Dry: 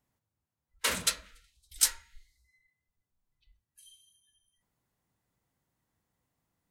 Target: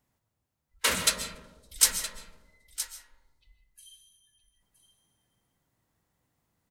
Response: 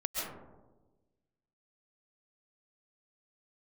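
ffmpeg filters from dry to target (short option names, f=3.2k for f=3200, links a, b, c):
-filter_complex "[0:a]aecho=1:1:968:0.237,asplit=2[a][b];[1:a]atrim=start_sample=2205[c];[b][c]afir=irnorm=-1:irlink=0,volume=-9.5dB[d];[a][d]amix=inputs=2:normalize=0,volume=1.5dB"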